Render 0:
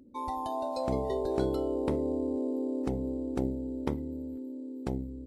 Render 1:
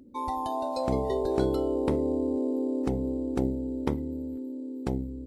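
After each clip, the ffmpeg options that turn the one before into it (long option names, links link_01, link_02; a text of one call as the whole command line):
ffmpeg -i in.wav -af "bandreject=frequency=620:width=12,volume=3.5dB" out.wav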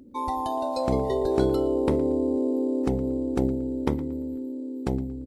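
ffmpeg -i in.wav -filter_complex "[0:a]asplit=2[link_01][link_02];[link_02]adelay=115,lowpass=frequency=4800:poles=1,volume=-17dB,asplit=2[link_03][link_04];[link_04]adelay=115,lowpass=frequency=4800:poles=1,volume=0.31,asplit=2[link_05][link_06];[link_06]adelay=115,lowpass=frequency=4800:poles=1,volume=0.31[link_07];[link_01][link_03][link_05][link_07]amix=inputs=4:normalize=0,volume=3dB" out.wav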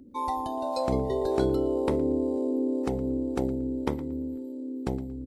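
ffmpeg -i in.wav -filter_complex "[0:a]acrossover=split=420[link_01][link_02];[link_01]aeval=exprs='val(0)*(1-0.5/2+0.5/2*cos(2*PI*1.9*n/s))':channel_layout=same[link_03];[link_02]aeval=exprs='val(0)*(1-0.5/2-0.5/2*cos(2*PI*1.9*n/s))':channel_layout=same[link_04];[link_03][link_04]amix=inputs=2:normalize=0" out.wav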